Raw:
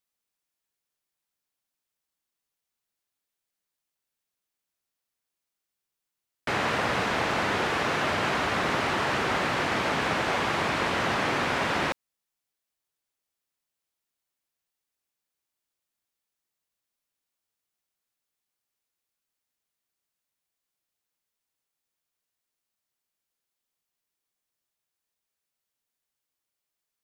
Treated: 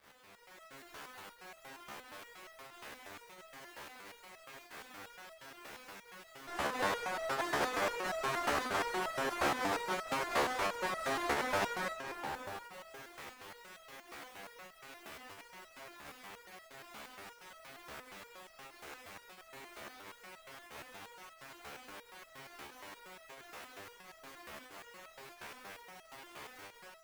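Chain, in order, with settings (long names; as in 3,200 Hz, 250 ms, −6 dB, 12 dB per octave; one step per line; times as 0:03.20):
converter with a step at zero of −33 dBFS
three-way crossover with the lows and the highs turned down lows −14 dB, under 290 Hz, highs −22 dB, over 2,500 Hz
comb and all-pass reverb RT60 2.7 s, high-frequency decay 0.45×, pre-delay 115 ms, DRR 8 dB
in parallel at −5.5 dB: fuzz pedal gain 45 dB, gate −52 dBFS
on the sum: noise gate −14 dBFS, range −27 dB
fake sidechain pumping 90 BPM, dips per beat 1, −14 dB, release 85 ms
low-shelf EQ 250 Hz +4.5 dB
automatic gain control gain up to 10 dB
step-sequenced resonator 8.5 Hz 72–650 Hz
level +5 dB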